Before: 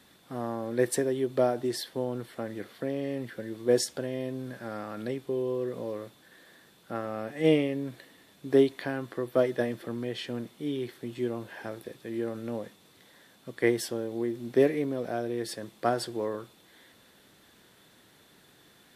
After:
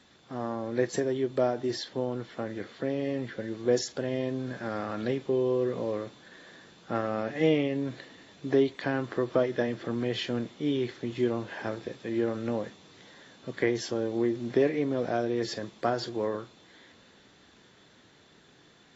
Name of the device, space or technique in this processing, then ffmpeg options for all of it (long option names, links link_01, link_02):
low-bitrate web radio: -af "dynaudnorm=framelen=400:gausssize=17:maxgain=4dB,alimiter=limit=-14dB:level=0:latency=1:release=391" -ar 22050 -c:a aac -b:a 24k